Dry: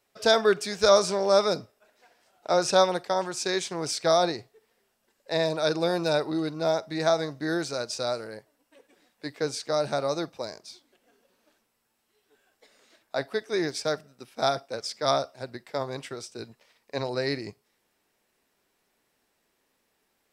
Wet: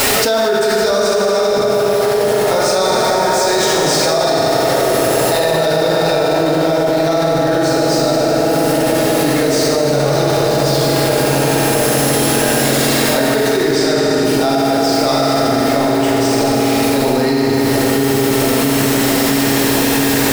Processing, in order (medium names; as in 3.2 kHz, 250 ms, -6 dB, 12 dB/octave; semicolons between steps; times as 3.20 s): jump at every zero crossing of -28 dBFS; 2.54–3.47 s: band-stop 2.8 kHz, Q 7.3; 13.71–14.25 s: low-pass 9 kHz; feedback echo behind a low-pass 666 ms, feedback 75%, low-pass 730 Hz, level -5 dB; reverberation RT60 5.0 s, pre-delay 4 ms, DRR -7 dB; level flattener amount 100%; trim -5 dB